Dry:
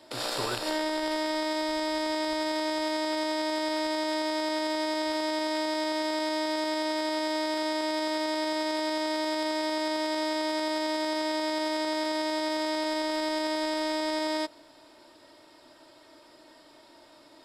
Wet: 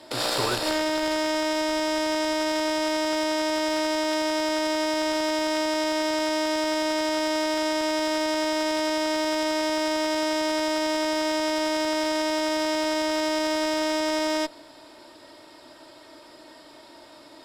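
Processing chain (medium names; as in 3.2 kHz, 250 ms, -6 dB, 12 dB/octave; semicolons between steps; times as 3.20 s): one-sided clip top -29 dBFS; trim +6.5 dB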